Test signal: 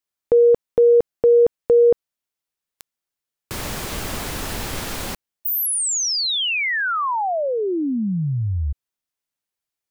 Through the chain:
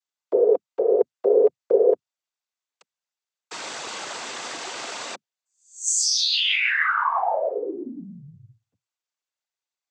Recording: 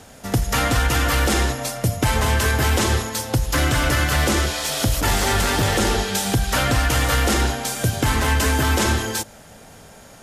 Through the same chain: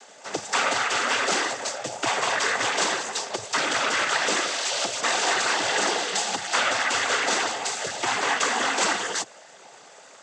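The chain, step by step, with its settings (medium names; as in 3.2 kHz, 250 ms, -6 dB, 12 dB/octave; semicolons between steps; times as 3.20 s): high-pass 540 Hz 12 dB/octave; noise-vocoded speech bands 16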